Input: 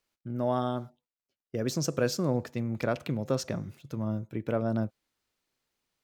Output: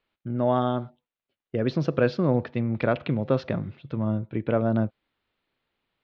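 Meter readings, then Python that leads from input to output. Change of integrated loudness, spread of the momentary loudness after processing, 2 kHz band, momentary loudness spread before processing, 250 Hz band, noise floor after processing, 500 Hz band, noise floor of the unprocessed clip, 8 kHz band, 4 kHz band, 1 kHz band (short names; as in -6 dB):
+5.5 dB, 8 LU, +5.5 dB, 9 LU, +5.5 dB, under -85 dBFS, +5.5 dB, under -85 dBFS, under -20 dB, -2.0 dB, +5.5 dB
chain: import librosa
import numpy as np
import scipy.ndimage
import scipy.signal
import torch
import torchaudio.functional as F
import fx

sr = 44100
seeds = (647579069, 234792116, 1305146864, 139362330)

y = scipy.signal.sosfilt(scipy.signal.butter(6, 3800.0, 'lowpass', fs=sr, output='sos'), x)
y = F.gain(torch.from_numpy(y), 5.5).numpy()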